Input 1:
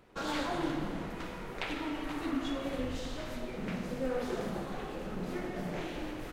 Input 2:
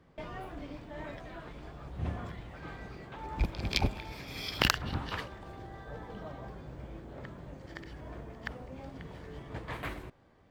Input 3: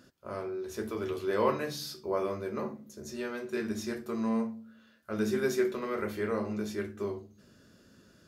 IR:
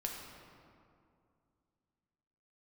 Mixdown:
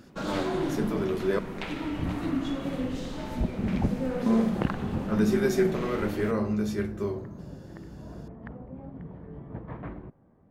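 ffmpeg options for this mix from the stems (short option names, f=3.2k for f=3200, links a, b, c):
-filter_complex "[0:a]volume=-2dB,asplit=2[a][b];[b]volume=-9.5dB[c];[1:a]lowpass=1.1k,volume=-1dB[d];[2:a]asubboost=boost=8:cutoff=61,volume=1dB,asplit=3[e][f][g];[e]atrim=end=1.39,asetpts=PTS-STARTPTS,afade=t=out:st=1.386:d=0.004:c=hsin[h];[f]atrim=start=1.39:end=4.26,asetpts=PTS-STARTPTS,volume=0[i];[g]atrim=start=4.26,asetpts=PTS-STARTPTS,afade=t=in:d=0.004:c=hsin[j];[h][i][j]concat=n=3:v=0:a=1,asplit=2[k][l];[l]volume=-15dB[m];[3:a]atrim=start_sample=2205[n];[c][m]amix=inputs=2:normalize=0[o];[o][n]afir=irnorm=-1:irlink=0[p];[a][d][k][p]amix=inputs=4:normalize=0,equalizer=f=190:w=1.1:g=9"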